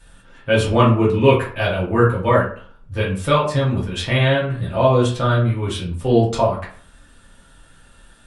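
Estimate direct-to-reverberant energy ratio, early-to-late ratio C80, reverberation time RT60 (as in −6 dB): −6.5 dB, 11.5 dB, 0.50 s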